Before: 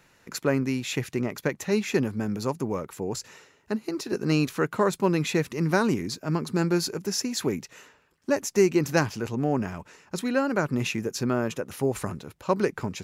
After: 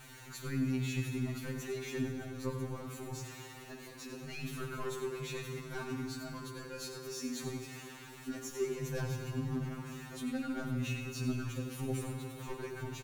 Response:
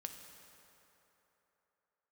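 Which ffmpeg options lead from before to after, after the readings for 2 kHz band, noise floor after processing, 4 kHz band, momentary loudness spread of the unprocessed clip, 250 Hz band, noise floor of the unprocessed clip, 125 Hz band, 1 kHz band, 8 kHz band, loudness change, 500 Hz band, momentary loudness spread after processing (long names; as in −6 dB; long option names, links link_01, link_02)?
−12.5 dB, −51 dBFS, −11.5 dB, 10 LU, −12.0 dB, −62 dBFS, −8.0 dB, −15.5 dB, −11.0 dB, −12.5 dB, −15.0 dB, 9 LU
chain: -filter_complex "[0:a]aeval=exprs='val(0)+0.5*0.0188*sgn(val(0))':channel_layout=same,lowshelf=frequency=470:gain=-10,bandreject=frequency=5100:width=9.1,bandreject=frequency=66.03:width_type=h:width=4,bandreject=frequency=132.06:width_type=h:width=4,asoftclip=type=tanh:threshold=-23.5dB,bass=frequency=250:gain=13,treble=frequency=4000:gain=-1,aecho=1:1:94:0.316[link_01];[1:a]atrim=start_sample=2205,asetrate=38808,aresample=44100[link_02];[link_01][link_02]afir=irnorm=-1:irlink=0,afftfilt=real='re*2.45*eq(mod(b,6),0)':imag='im*2.45*eq(mod(b,6),0)':win_size=2048:overlap=0.75,volume=-6.5dB"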